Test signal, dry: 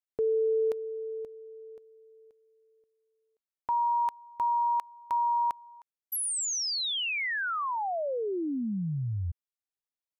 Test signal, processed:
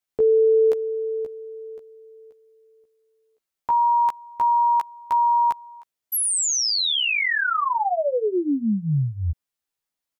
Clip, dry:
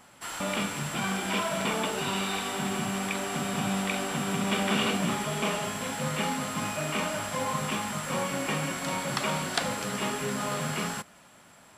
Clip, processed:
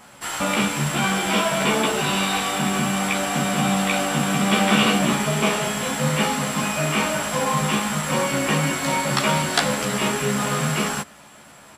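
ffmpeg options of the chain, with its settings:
-filter_complex "[0:a]asplit=2[a][b];[b]adelay=14,volume=-2dB[c];[a][c]amix=inputs=2:normalize=0,volume=6.5dB"

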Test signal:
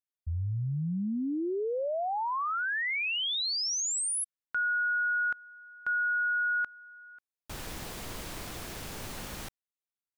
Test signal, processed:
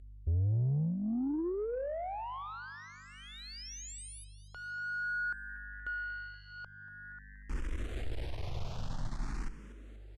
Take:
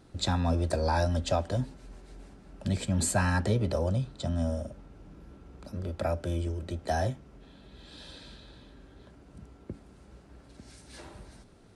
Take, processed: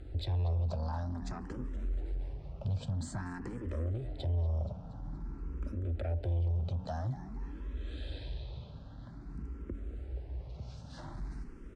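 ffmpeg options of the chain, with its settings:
-filter_complex "[0:a]acompressor=threshold=-37dB:ratio=2.5:attack=1.2:release=186:detection=rms,equalizer=f=190:w=5.3:g=-7.5,asplit=7[a][b][c][d][e][f][g];[b]adelay=237,afreqshift=100,volume=-16dB[h];[c]adelay=474,afreqshift=200,volume=-20.7dB[i];[d]adelay=711,afreqshift=300,volume=-25.5dB[j];[e]adelay=948,afreqshift=400,volume=-30.2dB[k];[f]adelay=1185,afreqshift=500,volume=-34.9dB[l];[g]adelay=1422,afreqshift=600,volume=-39.7dB[m];[a][h][i][j][k][l][m]amix=inputs=7:normalize=0,aeval=exprs='val(0)+0.000631*(sin(2*PI*50*n/s)+sin(2*PI*2*50*n/s)/2+sin(2*PI*3*50*n/s)/3+sin(2*PI*4*50*n/s)/4+sin(2*PI*5*50*n/s)/5)':c=same,aemphasis=mode=reproduction:type=bsi,acompressor=mode=upward:threshold=-48dB:ratio=2.5:attack=0.36:release=335:knee=2.83:detection=peak,lowpass=9.3k,asoftclip=type=tanh:threshold=-30dB,asplit=2[n][o];[o]afreqshift=0.5[p];[n][p]amix=inputs=2:normalize=1,volume=3dB"

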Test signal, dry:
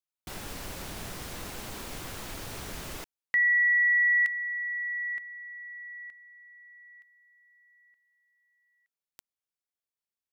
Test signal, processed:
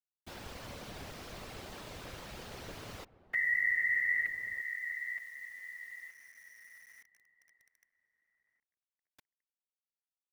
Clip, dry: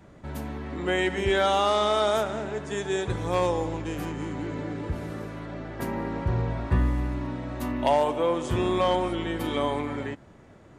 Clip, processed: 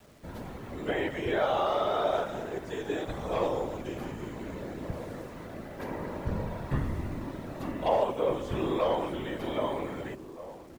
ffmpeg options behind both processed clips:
-filter_complex "[0:a]bass=f=250:g=-1,treble=f=4k:g=5,acrossover=split=4900[a][b];[b]acompressor=threshold=-55dB:ratio=4:attack=1:release=60[c];[a][c]amix=inputs=2:normalize=0,equalizer=f=550:t=o:w=0.6:g=3.5,acrossover=split=2400[d][e];[e]acompressor=threshold=-45dB:ratio=6:attack=57:release=94:knee=6:detection=peak[f];[d][f]amix=inputs=2:normalize=0,afftfilt=real='hypot(re,im)*cos(2*PI*random(0))':imag='hypot(re,im)*sin(2*PI*random(1))':win_size=512:overlap=0.75,acrusher=bits=9:mix=0:aa=0.000001,asplit=2[g][h];[h]adelay=1574,volume=-15dB,highshelf=f=4k:g=-35.4[i];[g][i]amix=inputs=2:normalize=0"

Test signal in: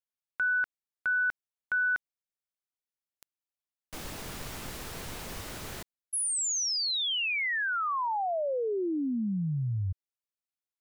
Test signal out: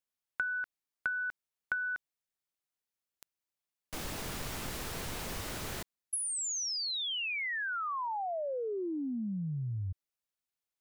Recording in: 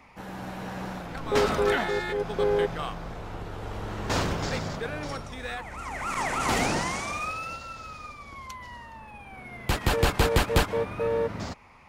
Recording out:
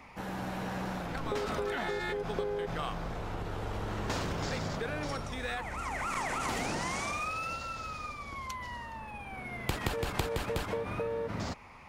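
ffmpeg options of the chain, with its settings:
-af "acompressor=threshold=-39dB:ratio=8:attack=63:release=48:knee=6:detection=peak,volume=1.5dB"

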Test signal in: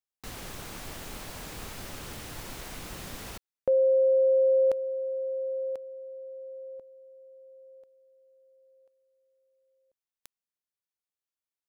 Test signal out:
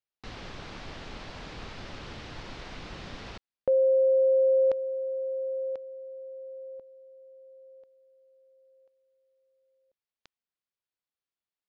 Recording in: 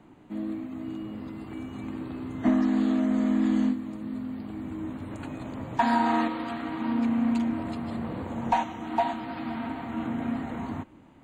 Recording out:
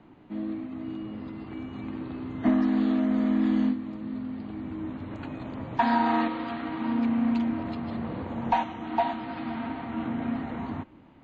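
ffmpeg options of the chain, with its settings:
-af "lowpass=f=4.9k:w=0.5412,lowpass=f=4.9k:w=1.3066"

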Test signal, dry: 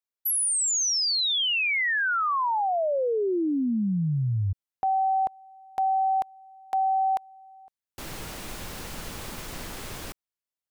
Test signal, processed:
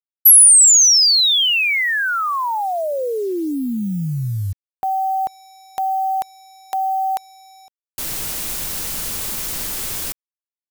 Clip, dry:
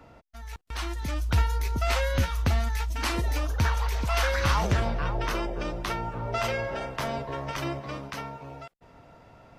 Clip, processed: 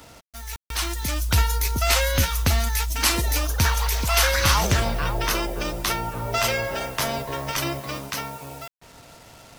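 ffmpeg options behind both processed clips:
-af "acrusher=bits=8:mix=0:aa=0.5,crystalizer=i=3.5:c=0,volume=3dB"

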